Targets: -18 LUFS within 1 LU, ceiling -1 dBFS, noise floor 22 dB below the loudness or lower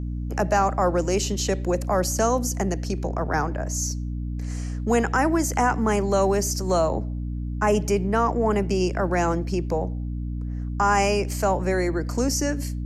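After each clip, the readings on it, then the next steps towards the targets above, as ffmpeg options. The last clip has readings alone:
hum 60 Hz; harmonics up to 300 Hz; hum level -26 dBFS; loudness -24.0 LUFS; peak -10.0 dBFS; loudness target -18.0 LUFS
-> -af "bandreject=f=60:t=h:w=4,bandreject=f=120:t=h:w=4,bandreject=f=180:t=h:w=4,bandreject=f=240:t=h:w=4,bandreject=f=300:t=h:w=4"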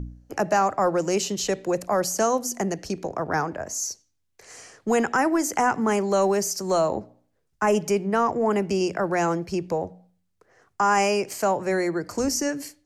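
hum none; loudness -24.5 LUFS; peak -11.5 dBFS; loudness target -18.0 LUFS
-> -af "volume=6.5dB"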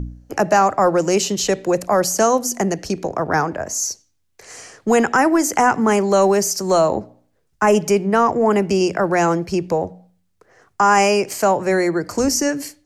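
loudness -18.0 LUFS; peak -5.0 dBFS; noise floor -65 dBFS

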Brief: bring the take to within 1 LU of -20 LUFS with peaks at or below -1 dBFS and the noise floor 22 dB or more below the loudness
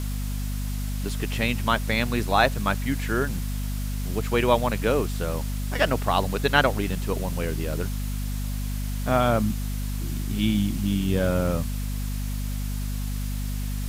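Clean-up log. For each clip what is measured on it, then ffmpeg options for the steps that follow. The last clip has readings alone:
hum 50 Hz; harmonics up to 250 Hz; hum level -26 dBFS; noise floor -29 dBFS; noise floor target -48 dBFS; loudness -26.0 LUFS; peak -5.0 dBFS; loudness target -20.0 LUFS
-> -af "bandreject=f=50:t=h:w=4,bandreject=f=100:t=h:w=4,bandreject=f=150:t=h:w=4,bandreject=f=200:t=h:w=4,bandreject=f=250:t=h:w=4"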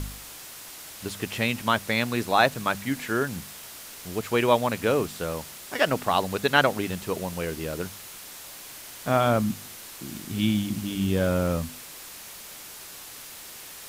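hum none; noise floor -43 dBFS; noise floor target -48 dBFS
-> -af "afftdn=nr=6:nf=-43"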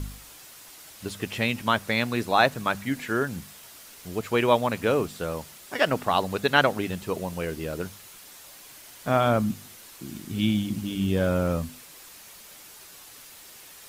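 noise floor -48 dBFS; loudness -26.0 LUFS; peak -5.0 dBFS; loudness target -20.0 LUFS
-> -af "volume=6dB,alimiter=limit=-1dB:level=0:latency=1"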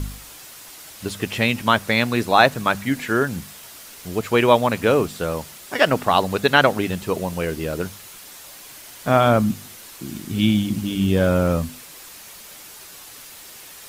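loudness -20.0 LUFS; peak -1.0 dBFS; noise floor -42 dBFS

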